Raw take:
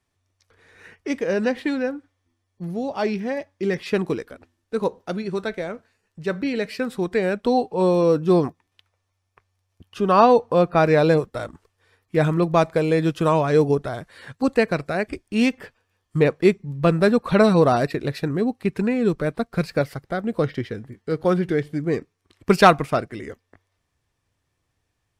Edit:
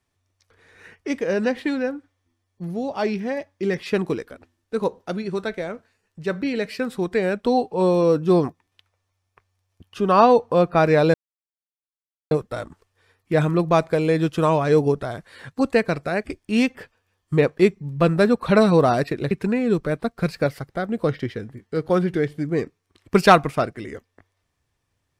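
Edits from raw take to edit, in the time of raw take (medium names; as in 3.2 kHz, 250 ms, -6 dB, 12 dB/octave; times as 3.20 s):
11.14 s: insert silence 1.17 s
18.14–18.66 s: delete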